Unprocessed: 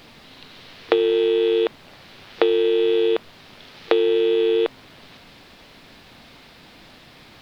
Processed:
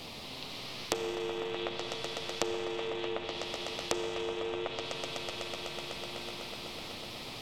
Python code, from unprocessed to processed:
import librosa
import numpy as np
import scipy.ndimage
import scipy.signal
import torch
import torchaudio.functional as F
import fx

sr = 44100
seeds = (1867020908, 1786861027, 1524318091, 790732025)

y = 10.0 ** (-6.0 / 20.0) * (np.abs((x / 10.0 ** (-6.0 / 20.0) + 3.0) % 4.0 - 2.0) - 1.0)
y = fx.peak_eq(y, sr, hz=1600.0, db=-14.5, octaves=0.68)
y = fx.echo_swell(y, sr, ms=125, loudest=5, wet_db=-12.5)
y = fx.chorus_voices(y, sr, voices=2, hz=0.4, base_ms=12, depth_ms=4.8, mix_pct=30)
y = fx.env_lowpass_down(y, sr, base_hz=1600.0, full_db=-19.0)
y = fx.rev_schroeder(y, sr, rt60_s=2.8, comb_ms=28, drr_db=10.0)
y = fx.spectral_comp(y, sr, ratio=2.0)
y = y * 10.0 ** (-3.0 / 20.0)